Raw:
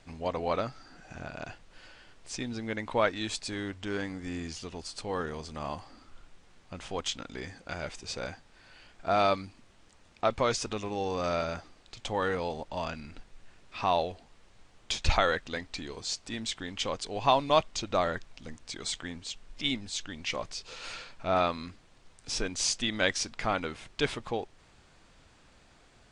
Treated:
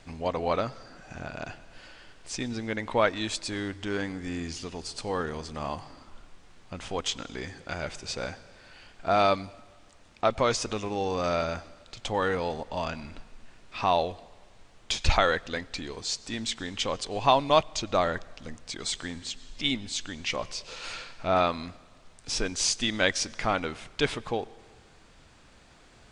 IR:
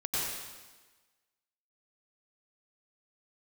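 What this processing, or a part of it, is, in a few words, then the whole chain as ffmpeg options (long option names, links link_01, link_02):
ducked reverb: -filter_complex "[0:a]asplit=3[link_01][link_02][link_03];[1:a]atrim=start_sample=2205[link_04];[link_02][link_04]afir=irnorm=-1:irlink=0[link_05];[link_03]apad=whole_len=1151699[link_06];[link_05][link_06]sidechaincompress=threshold=-51dB:ratio=4:attack=43:release=1380,volume=-8dB[link_07];[link_01][link_07]amix=inputs=2:normalize=0,volume=2.5dB"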